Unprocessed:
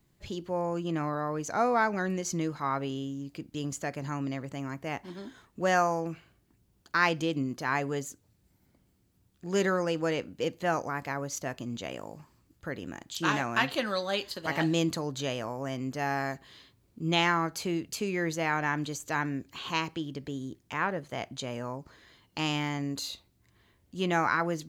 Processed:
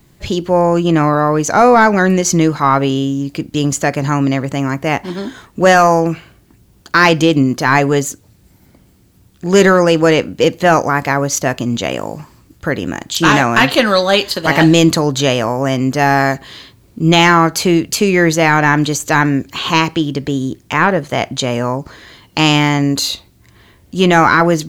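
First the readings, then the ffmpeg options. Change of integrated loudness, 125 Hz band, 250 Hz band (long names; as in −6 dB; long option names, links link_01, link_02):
+18.0 dB, +19.0 dB, +19.0 dB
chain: -af "aeval=exprs='0.335*(cos(1*acos(clip(val(0)/0.335,-1,1)))-cos(1*PI/2))+0.00237*(cos(8*acos(clip(val(0)/0.335,-1,1)))-cos(8*PI/2))':channel_layout=same,apsyclip=21dB,volume=-2dB"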